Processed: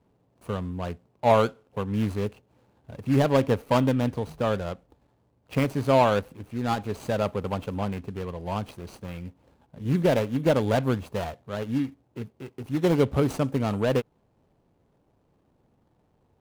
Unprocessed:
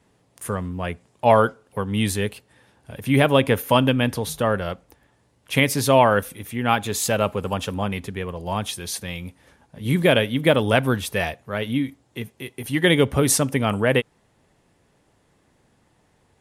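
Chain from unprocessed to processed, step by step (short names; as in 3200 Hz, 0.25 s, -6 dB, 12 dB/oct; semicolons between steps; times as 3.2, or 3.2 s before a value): median filter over 25 samples; gain -3 dB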